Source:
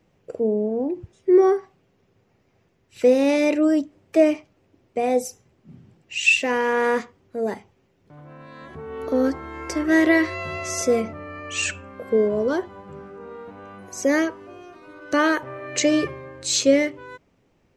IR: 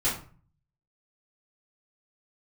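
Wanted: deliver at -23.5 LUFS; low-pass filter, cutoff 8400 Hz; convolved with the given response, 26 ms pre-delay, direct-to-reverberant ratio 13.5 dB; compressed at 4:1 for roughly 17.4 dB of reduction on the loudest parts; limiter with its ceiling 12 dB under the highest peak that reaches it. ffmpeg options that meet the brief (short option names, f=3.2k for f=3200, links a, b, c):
-filter_complex "[0:a]lowpass=8.4k,acompressor=threshold=-33dB:ratio=4,alimiter=level_in=8dB:limit=-24dB:level=0:latency=1,volume=-8dB,asplit=2[a][b];[1:a]atrim=start_sample=2205,adelay=26[c];[b][c]afir=irnorm=-1:irlink=0,volume=-23.5dB[d];[a][d]amix=inputs=2:normalize=0,volume=17dB"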